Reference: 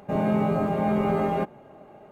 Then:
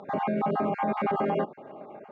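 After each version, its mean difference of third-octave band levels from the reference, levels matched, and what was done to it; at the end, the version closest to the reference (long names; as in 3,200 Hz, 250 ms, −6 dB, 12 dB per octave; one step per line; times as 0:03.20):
5.0 dB: time-frequency cells dropped at random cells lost 32%
brickwall limiter −23 dBFS, peak gain reduction 10.5 dB
band-pass filter 200–3,300 Hz
level +5 dB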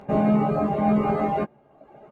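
3.5 dB: low-pass filter 3,300 Hz 6 dB per octave
reverb reduction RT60 1 s
double-tracking delay 14 ms −5 dB
level +3 dB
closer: second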